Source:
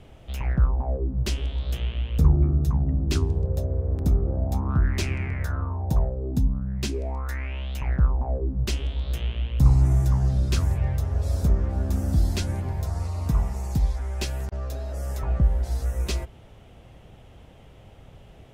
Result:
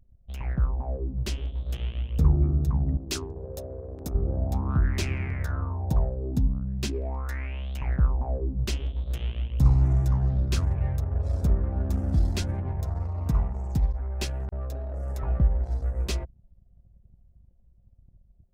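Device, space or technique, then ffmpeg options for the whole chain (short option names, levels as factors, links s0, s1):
voice memo with heavy noise removal: -filter_complex "[0:a]asettb=1/sr,asplit=3[s0][s1][s2];[s0]atrim=end=2.974[s3];[s1]atrim=start=2.97:end=4.15,asetpts=PTS-STARTPTS,afade=t=in:d=0.004:c=qsin,afade=t=out:st=1.176:d=0.004:c=qsin,bass=f=250:g=-13,treble=f=4000:g=6[s4];[s2]atrim=start=4.146[s5];[s3][s4]acrossfade=d=0.004:c1=hsin:c2=qsin[s6];[s6][s5]acrossfade=d=0.004:c1=qsin:c2=hsin,anlmdn=1.58,dynaudnorm=f=700:g=5:m=1.41,volume=0.596"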